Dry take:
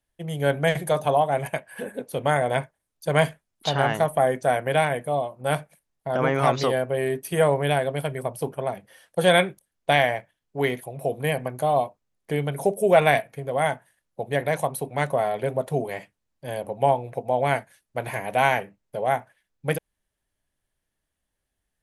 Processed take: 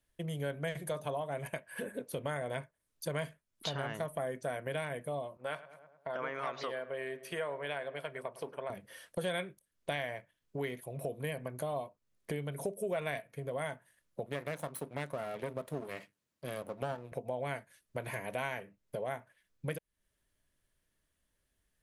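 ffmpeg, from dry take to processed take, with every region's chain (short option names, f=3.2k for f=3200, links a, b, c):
-filter_complex "[0:a]asettb=1/sr,asplit=3[a][b][c];[a]atrim=end=5.374[d];[b]atrim=start=5.37:end=8.7,asetpts=PTS-STARTPTS,afade=t=in:d=0.004:c=qsin,afade=t=out:st=3.326:d=0.004:c=qsin,bandpass=f=1.5k:t=q:w=0.57,asplit=2[e][f];[f]adelay=105,lowpass=f=1.8k:p=1,volume=-17dB,asplit=2[g][h];[h]adelay=105,lowpass=f=1.8k:p=1,volume=0.52,asplit=2[i][j];[j]adelay=105,lowpass=f=1.8k:p=1,volume=0.52,asplit=2[k][l];[l]adelay=105,lowpass=f=1.8k:p=1,volume=0.52,asplit=2[m][n];[n]adelay=105,lowpass=f=1.8k:p=1,volume=0.52[o];[e][g][i][k][m][o]amix=inputs=6:normalize=0,atrim=end_sample=146853[p];[c]atrim=start=8.696[q];[d][p]acrossfade=d=0.004:c1=hsin:c2=qsin[r];[r][q]acrossfade=d=0.004:c1=qsin:c2=hsin,asettb=1/sr,asplit=3[s][t][u];[s]atrim=end=14.264[v];[t]atrim=start=14.26:end=17.12,asetpts=PTS-STARTPTS,afade=t=in:d=0.004:c=qsin,afade=t=out:st=2.856:d=0.004:c=qsin,aeval=exprs='if(lt(val(0),0),0.251*val(0),val(0))':c=same,highpass=120[w];[u]atrim=start=17.116[x];[v][w]acrossfade=d=0.004:c1=hsin:c2=qsin[y];[y][x]acrossfade=d=0.004:c1=qsin:c2=hsin,equalizer=f=790:t=o:w=0.22:g=-10.5,acompressor=threshold=-40dB:ratio=3,volume=1dB"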